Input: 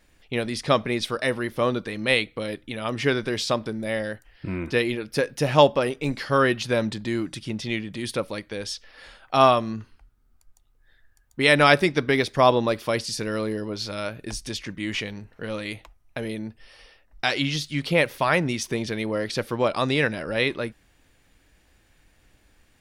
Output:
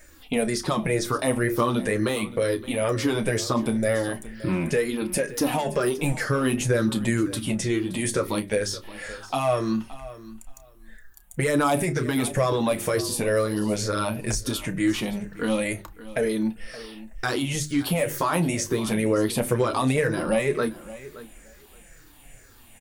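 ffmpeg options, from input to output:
-filter_complex "[0:a]afftfilt=real='re*pow(10,10/40*sin(2*PI*(0.53*log(max(b,1)*sr/1024/100)/log(2)-(-2.1)*(pts-256)/sr)))':imag='im*pow(10,10/40*sin(2*PI*(0.53*log(max(b,1)*sr/1024/100)/log(2)-(-2.1)*(pts-256)/sr)))':win_size=1024:overlap=0.75,highshelf=f=8.1k:g=-4.5,bandreject=f=50:t=h:w=6,bandreject=f=100:t=h:w=6,bandreject=f=150:t=h:w=6,bandreject=f=200:t=h:w=6,bandreject=f=250:t=h:w=6,bandreject=f=300:t=h:w=6,bandreject=f=350:t=h:w=6,bandreject=f=400:t=h:w=6,acontrast=47,alimiter=limit=-11.5dB:level=0:latency=1:release=20,acrossover=split=1500|7000[a][b][c];[a]acompressor=threshold=-22dB:ratio=4[d];[b]acompressor=threshold=-38dB:ratio=4[e];[c]acompressor=threshold=-41dB:ratio=4[f];[d][e][f]amix=inputs=3:normalize=0,aexciter=amount=4.5:drive=3:freq=6.9k,flanger=delay=3.1:depth=8.7:regen=-13:speed=0.19:shape=triangular,asplit=2[g][h];[h]adelay=31,volume=-13dB[i];[g][i]amix=inputs=2:normalize=0,aecho=1:1:572|1144:0.141|0.024,volume=4.5dB"

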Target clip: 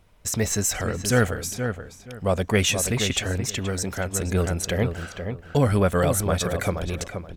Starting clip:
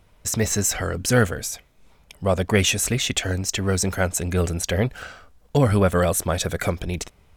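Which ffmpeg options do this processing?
-filter_complex "[0:a]asplit=2[a][b];[b]adelay=476,lowpass=f=2.2k:p=1,volume=-7dB,asplit=2[c][d];[d]adelay=476,lowpass=f=2.2k:p=1,volume=0.23,asplit=2[e][f];[f]adelay=476,lowpass=f=2.2k:p=1,volume=0.23[g];[a][c][e][g]amix=inputs=4:normalize=0,asettb=1/sr,asplit=3[h][i][j];[h]atrim=end=3.454[k];[i]atrim=start=3.45:end=4.14,asetpts=PTS-STARTPTS,afade=t=in:d=0.004:c=qsin,afade=t=out:st=0.686:d=0.004:c=qsin,acompressor=threshold=-23dB:ratio=2.5[l];[j]atrim=start=4.136[m];[k][l]acrossfade=d=0.004:c1=hsin:c2=qsin[n];[n][m]acrossfade=d=0.004:c1=qsin:c2=hsin,volume=-2dB"

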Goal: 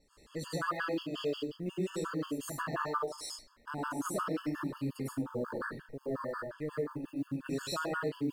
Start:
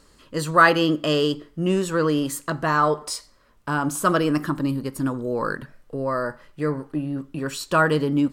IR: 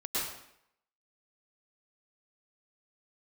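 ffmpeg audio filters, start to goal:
-filter_complex "[1:a]atrim=start_sample=2205,afade=t=out:st=0.3:d=0.01,atrim=end_sample=13671[a];[0:a][a]afir=irnorm=-1:irlink=0,adynamicequalizer=threshold=0.00398:dfrequency=8900:dqfactor=4.5:tfrequency=8900:tqfactor=4.5:attack=5:release=100:ratio=0.375:range=2:mode=cutabove:tftype=bell,acompressor=threshold=-23dB:ratio=4,acrusher=bits=9:mode=log:mix=0:aa=0.000001,afftfilt=real='re*gt(sin(2*PI*5.6*pts/sr)*(1-2*mod(floor(b*sr/1024/890),2)),0)':imag='im*gt(sin(2*PI*5.6*pts/sr)*(1-2*mod(floor(b*sr/1024/890),2)),0)':win_size=1024:overlap=0.75,volume=-8dB"

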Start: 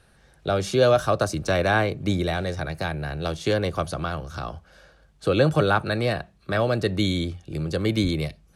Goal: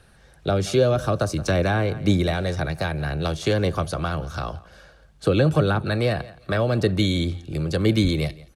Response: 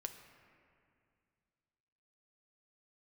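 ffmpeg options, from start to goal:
-filter_complex "[0:a]aphaser=in_gain=1:out_gain=1:delay=2.2:decay=0.2:speed=1.9:type=triangular,aecho=1:1:171|342:0.0841|0.0143,acrossover=split=410[a][b];[b]acompressor=threshold=-26dB:ratio=5[c];[a][c]amix=inputs=2:normalize=0,volume=3dB"

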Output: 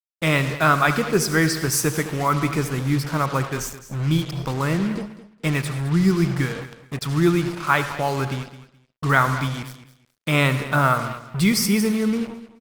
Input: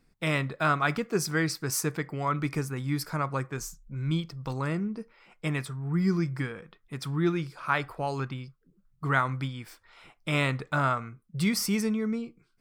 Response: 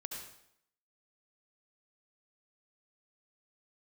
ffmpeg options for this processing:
-filter_complex "[0:a]asettb=1/sr,asplit=3[a][b][c];[a]atrim=end=2.794[d];[b]atrim=start=2.79:end=3.33,asetpts=PTS-STARTPTS,afade=t=in:d=0.004:c=qsin,afade=t=out:st=0.536:d=0.004:c=qsin,highshelf=f=5k:g=-10.5[e];[c]atrim=start=3.326[f];[d][e]acrossfade=d=0.004:c1=hsin:c2=qsin[g];[g][f]acrossfade=d=0.004:c1=qsin:c2=hsin,asplit=2[h][i];[1:a]atrim=start_sample=2205[j];[i][j]afir=irnorm=-1:irlink=0,volume=-4.5dB[k];[h][k]amix=inputs=2:normalize=0,acrusher=bits=5:mix=0:aa=0.5,aecho=1:1:212|424:0.178|0.0373,volume=5dB" -ar 48000 -c:a libopus -b:a 48k

